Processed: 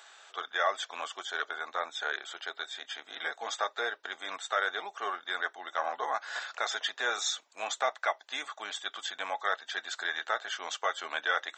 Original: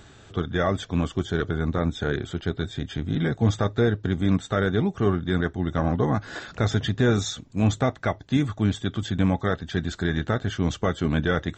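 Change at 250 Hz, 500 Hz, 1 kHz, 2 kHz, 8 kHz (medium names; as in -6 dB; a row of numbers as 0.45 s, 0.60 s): -32.5 dB, -11.5 dB, -0.5 dB, 0.0 dB, 0.0 dB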